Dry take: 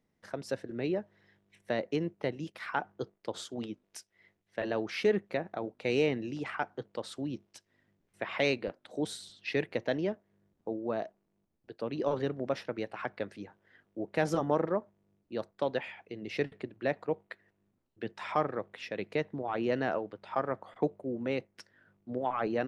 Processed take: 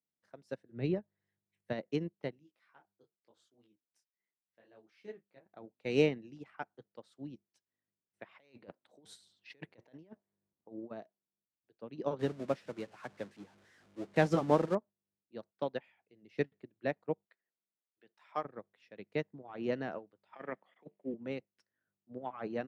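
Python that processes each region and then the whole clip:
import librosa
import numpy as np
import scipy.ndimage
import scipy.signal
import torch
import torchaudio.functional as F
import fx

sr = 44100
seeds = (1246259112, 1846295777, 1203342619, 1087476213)

y = fx.chain(x, sr, fx.peak_eq(hz=120.0, db=9.5, octaves=0.85),
    fx.notch(hz=5700.0, q=17.0), at=(0.71, 1.73))
y = fx.chain(y, sr, fx.comb_fb(f0_hz=320.0, decay_s=0.16, harmonics='odd', damping=0.0, mix_pct=40),
    fx.detune_double(cents=33), at=(2.39, 5.46))
y = fx.chain(y, sr, fx.peak_eq(hz=950.0, db=4.0, octaves=0.63),
    fx.over_compress(threshold_db=-38.0, ratio=-1.0), at=(8.38, 10.91))
y = fx.chain(y, sr, fx.zero_step(step_db=-36.5),
    fx.lowpass(hz=8300.0, slope=12), at=(12.19, 14.75))
y = fx.chain(y, sr, fx.median_filter(points=3),
    fx.highpass(hz=590.0, slope=6), at=(17.25, 18.45))
y = fx.chain(y, sr, fx.highpass(hz=160.0, slope=24),
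    fx.band_shelf(hz=2400.0, db=11.5, octaves=1.1),
    fx.over_compress(threshold_db=-31.0, ratio=-0.5), at=(20.33, 21.14))
y = scipy.signal.sosfilt(scipy.signal.butter(2, 85.0, 'highpass', fs=sr, output='sos'), y)
y = fx.dynamic_eq(y, sr, hz=180.0, q=1.0, threshold_db=-44.0, ratio=4.0, max_db=5)
y = fx.upward_expand(y, sr, threshold_db=-39.0, expansion=2.5)
y = y * librosa.db_to_amplitude(1.0)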